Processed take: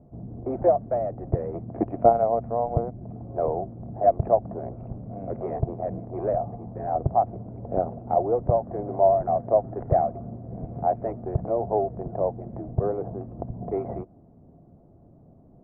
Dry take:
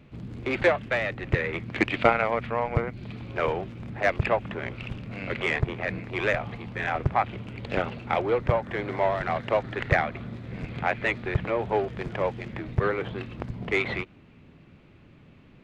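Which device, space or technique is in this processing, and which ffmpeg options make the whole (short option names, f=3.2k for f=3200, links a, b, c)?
under water: -af "lowpass=f=780:w=0.5412,lowpass=f=780:w=1.3066,equalizer=f=690:t=o:w=0.26:g=12"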